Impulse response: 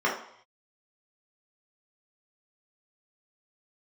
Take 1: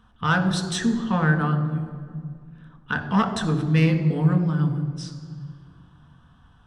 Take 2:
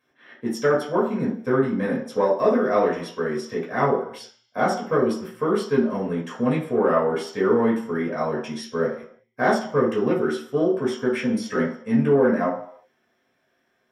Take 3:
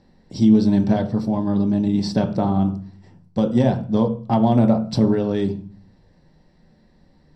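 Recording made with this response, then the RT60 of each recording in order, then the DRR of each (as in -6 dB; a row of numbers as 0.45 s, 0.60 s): 2; 2.0 s, 0.65 s, 0.40 s; 4.5 dB, -5.5 dB, 5.0 dB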